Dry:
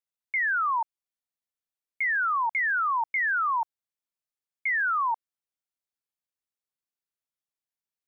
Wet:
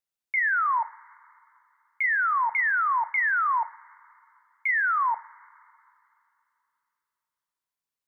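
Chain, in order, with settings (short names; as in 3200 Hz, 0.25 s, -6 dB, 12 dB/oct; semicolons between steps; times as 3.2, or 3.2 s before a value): two-slope reverb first 0.37 s, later 2.9 s, from -19 dB, DRR 12.5 dB; gain +1.5 dB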